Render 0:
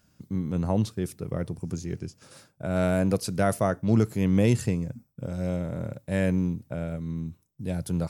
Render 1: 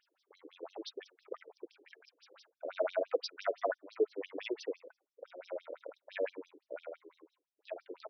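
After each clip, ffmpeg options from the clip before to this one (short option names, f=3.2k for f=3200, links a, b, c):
-af "flanger=delay=3.8:depth=1.3:regen=61:speed=1.9:shape=triangular,highpass=260,afftfilt=real='re*between(b*sr/1024,400*pow(4400/400,0.5+0.5*sin(2*PI*5.9*pts/sr))/1.41,400*pow(4400/400,0.5+0.5*sin(2*PI*5.9*pts/sr))*1.41)':imag='im*between(b*sr/1024,400*pow(4400/400,0.5+0.5*sin(2*PI*5.9*pts/sr))/1.41,400*pow(4400/400,0.5+0.5*sin(2*PI*5.9*pts/sr))*1.41)':win_size=1024:overlap=0.75,volume=3dB"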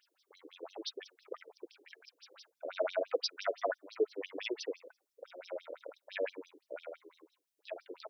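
-af "highshelf=f=2.8k:g=9.5,volume=-1dB"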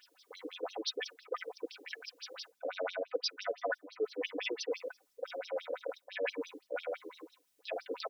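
-af "aecho=1:1:4:0.69,areverse,acompressor=threshold=-44dB:ratio=4,areverse,volume=9.5dB"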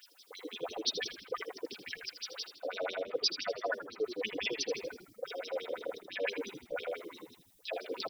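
-filter_complex "[0:a]highshelf=f=4.9k:g=10.5,asplit=2[a][b];[b]asplit=5[c][d][e][f][g];[c]adelay=80,afreqshift=-72,volume=-11dB[h];[d]adelay=160,afreqshift=-144,volume=-17dB[i];[e]adelay=240,afreqshift=-216,volume=-23dB[j];[f]adelay=320,afreqshift=-288,volume=-29.1dB[k];[g]adelay=400,afreqshift=-360,volume=-35.1dB[l];[h][i][j][k][l]amix=inputs=5:normalize=0[m];[a][m]amix=inputs=2:normalize=0"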